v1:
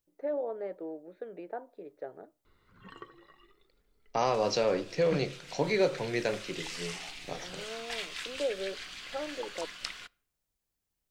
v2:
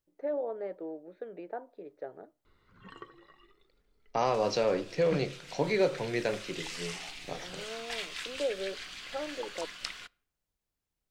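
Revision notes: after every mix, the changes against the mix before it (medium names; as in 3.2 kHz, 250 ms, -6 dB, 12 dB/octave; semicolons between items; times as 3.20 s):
second voice: add treble shelf 5.4 kHz -6.5 dB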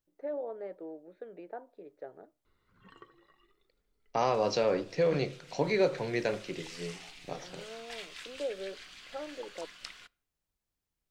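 first voice -3.5 dB; background -6.5 dB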